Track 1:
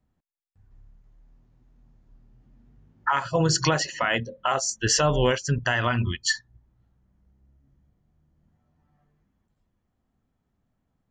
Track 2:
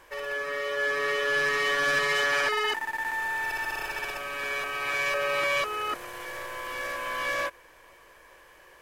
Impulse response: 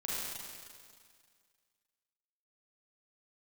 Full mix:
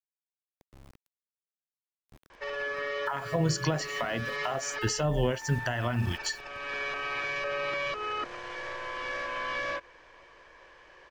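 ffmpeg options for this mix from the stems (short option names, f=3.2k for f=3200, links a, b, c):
-filter_complex "[0:a]equalizer=f=670:w=4:g=7,acrusher=bits=7:mix=0:aa=0.000001,volume=-3.5dB,asplit=2[a][b];[1:a]lowpass=f=5.7k:w=0.5412,lowpass=f=5.7k:w=1.3066,adelay=2300,volume=-0.5dB[c];[b]apad=whole_len=490271[d];[c][d]sidechaincompress=threshold=-34dB:ratio=3:attack=25:release=601[e];[a][e]amix=inputs=2:normalize=0,acrossover=split=380[f][g];[g]acompressor=threshold=-30dB:ratio=6[h];[f][h]amix=inputs=2:normalize=0"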